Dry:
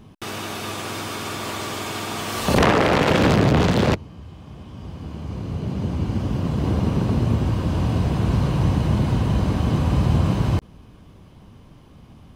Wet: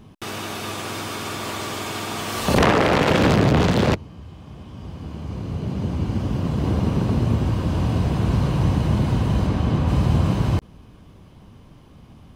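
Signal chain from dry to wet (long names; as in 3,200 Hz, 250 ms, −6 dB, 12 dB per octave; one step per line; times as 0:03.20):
0:09.46–0:09.87: high-shelf EQ 9,700 Hz → 5,700 Hz −9.5 dB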